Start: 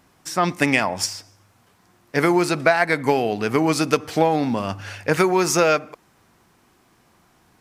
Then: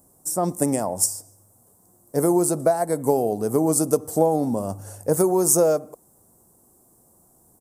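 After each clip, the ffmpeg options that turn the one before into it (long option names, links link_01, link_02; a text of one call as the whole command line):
ffmpeg -i in.wav -af "firequalizer=gain_entry='entry(290,0);entry(540,3);entry(1500,-17);entry(2400,-28);entry(8200,13)':delay=0.05:min_phase=1,volume=-1.5dB" out.wav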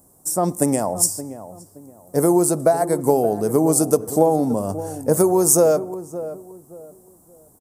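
ffmpeg -i in.wav -filter_complex "[0:a]asplit=2[link_01][link_02];[link_02]adelay=572,lowpass=frequency=1000:poles=1,volume=-12.5dB,asplit=2[link_03][link_04];[link_04]adelay=572,lowpass=frequency=1000:poles=1,volume=0.31,asplit=2[link_05][link_06];[link_06]adelay=572,lowpass=frequency=1000:poles=1,volume=0.31[link_07];[link_01][link_03][link_05][link_07]amix=inputs=4:normalize=0,volume=3dB" out.wav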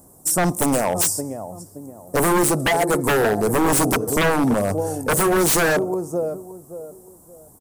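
ffmpeg -i in.wav -af "aphaser=in_gain=1:out_gain=1:delay=2.3:decay=0.21:speed=0.5:type=sinusoidal,aeval=exprs='0.15*(abs(mod(val(0)/0.15+3,4)-2)-1)':channel_layout=same,volume=4dB" out.wav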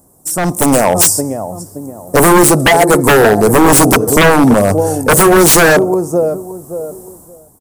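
ffmpeg -i in.wav -af "dynaudnorm=framelen=100:gausssize=11:maxgain=14dB" out.wav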